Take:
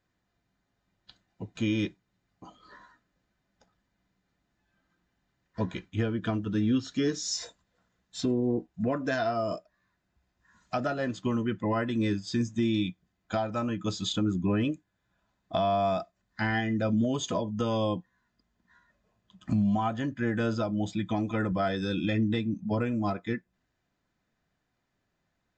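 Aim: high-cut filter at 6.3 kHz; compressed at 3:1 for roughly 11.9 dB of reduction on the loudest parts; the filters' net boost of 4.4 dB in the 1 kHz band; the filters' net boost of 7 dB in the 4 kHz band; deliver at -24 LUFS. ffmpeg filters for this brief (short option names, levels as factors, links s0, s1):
-af "lowpass=6300,equalizer=f=1000:t=o:g=6,equalizer=f=4000:t=o:g=9,acompressor=threshold=0.0141:ratio=3,volume=5.01"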